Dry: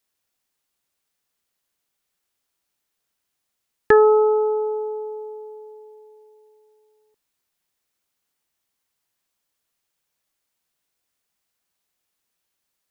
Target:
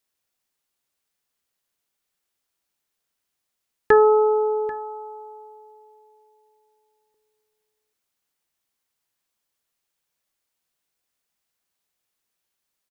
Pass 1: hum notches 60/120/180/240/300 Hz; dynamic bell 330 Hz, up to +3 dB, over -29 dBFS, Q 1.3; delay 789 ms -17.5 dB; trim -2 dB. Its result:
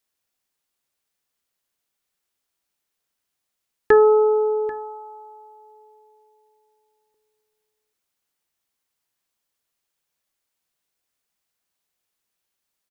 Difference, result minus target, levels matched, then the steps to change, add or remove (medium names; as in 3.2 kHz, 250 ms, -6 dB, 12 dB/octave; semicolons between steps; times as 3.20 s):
1 kHz band -3.5 dB
change: dynamic bell 940 Hz, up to +3 dB, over -29 dBFS, Q 1.3